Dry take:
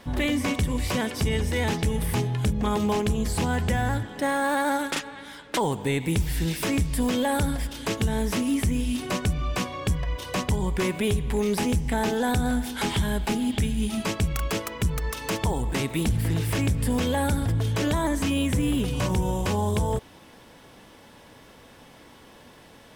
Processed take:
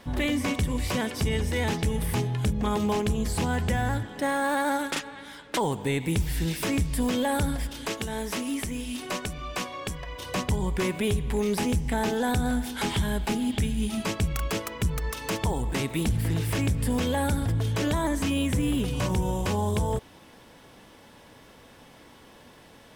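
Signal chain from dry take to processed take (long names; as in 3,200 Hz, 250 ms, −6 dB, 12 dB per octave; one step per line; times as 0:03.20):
0:07.86–0:10.19: parametric band 82 Hz −11.5 dB 2.9 octaves
level −1.5 dB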